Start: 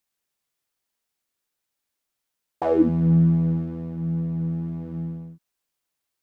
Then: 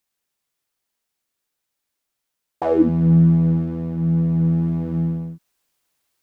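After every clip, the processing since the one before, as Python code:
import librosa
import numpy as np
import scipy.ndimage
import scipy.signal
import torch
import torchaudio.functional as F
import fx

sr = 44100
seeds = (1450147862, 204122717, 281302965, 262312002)

y = fx.rider(x, sr, range_db=4, speed_s=2.0)
y = y * 10.0 ** (5.0 / 20.0)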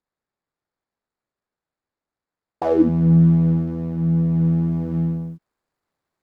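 y = scipy.signal.medfilt(x, 15)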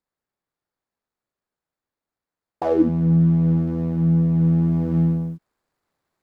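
y = fx.rider(x, sr, range_db=3, speed_s=0.5)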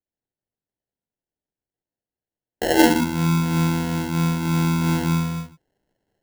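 y = fx.noise_reduce_blind(x, sr, reduce_db=10)
y = fx.rev_gated(y, sr, seeds[0], gate_ms=200, shape='flat', drr_db=-2.5)
y = fx.sample_hold(y, sr, seeds[1], rate_hz=1200.0, jitter_pct=0)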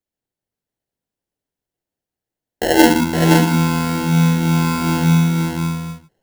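y = x + 10.0 ** (-4.0 / 20.0) * np.pad(x, (int(517 * sr / 1000.0), 0))[:len(x)]
y = y * 10.0 ** (4.0 / 20.0)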